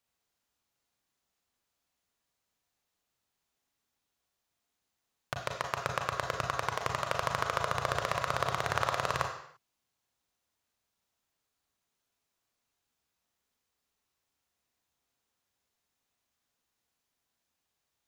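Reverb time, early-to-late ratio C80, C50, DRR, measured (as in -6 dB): no single decay rate, 8.5 dB, 5.5 dB, 2.5 dB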